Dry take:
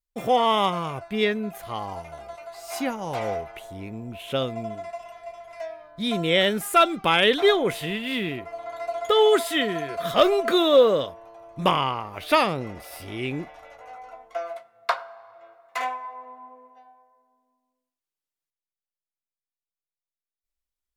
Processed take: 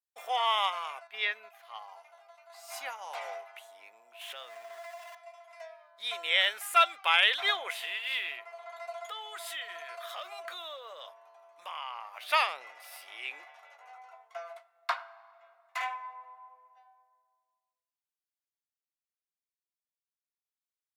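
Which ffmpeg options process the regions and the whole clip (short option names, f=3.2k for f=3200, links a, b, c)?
-filter_complex "[0:a]asettb=1/sr,asplit=3[a][b][c];[a]atrim=end=1.074[d];[b]atrim=start=1.07:end=2.5,asetpts=PTS-STARTPTS,afade=t=in:d=0.004:c=qsin,afade=t=out:st=1.426:d=0.004:c=qsin,agate=range=-6dB:threshold=-30dB:ratio=16:release=100:detection=peak,acrossover=split=5400[e][f];[f]acompressor=threshold=-56dB:ratio=4:attack=1:release=60[g];[e][g]amix=inputs=2:normalize=0,equalizer=f=8.4k:t=o:w=0.63:g=-5[h];[c]atrim=start=2.496[i];[d][h]acrossfade=d=0.004:c1=hsin:c2=qsin[j];[j][i]acrossfade=d=0.004:c1=qsin:c2=hsin,asettb=1/sr,asplit=3[k][l][m];[k]atrim=end=4.214[n];[l]atrim=start=4.21:end=5.15,asetpts=PTS-STARTPTS,afade=t=in:d=0.004:c=qsin,afade=t=out:st=0.936:d=0.004:c=qsin,aeval=exprs='val(0)+0.5*0.0112*sgn(val(0))':c=same,equalizer=f=1.8k:t=o:w=0.31:g=7.5,acompressor=threshold=-28dB:ratio=10:attack=3.2:release=140:knee=1:detection=peak[o];[m]atrim=start=5.146[p];[n][o]acrossfade=d=0.004:c1=hsin:c2=qsin[q];[q][p]acrossfade=d=0.004:c1=qsin:c2=hsin,asettb=1/sr,asplit=3[r][s][t];[r]atrim=end=9.034[u];[s]atrim=start=9.03:end=12.21,asetpts=PTS-STARTPTS,afade=t=in:d=0.004:c=qsin,afade=t=out:st=3.176:d=0.004:c=qsin,bandreject=f=400:w=7,acompressor=threshold=-28dB:ratio=5:attack=3.2:release=140:knee=1:detection=peak[v];[t]atrim=start=12.206[w];[u][v]acrossfade=d=0.004:c1=hsin:c2=qsin[x];[x][w]acrossfade=d=0.004:c1=qsin:c2=hsin,highpass=f=740:w=0.5412,highpass=f=740:w=1.3066,adynamicequalizer=threshold=0.0158:dfrequency=2400:dqfactor=0.9:tfrequency=2400:tqfactor=0.9:attack=5:release=100:ratio=0.375:range=3:mode=boostabove:tftype=bell,volume=-7dB"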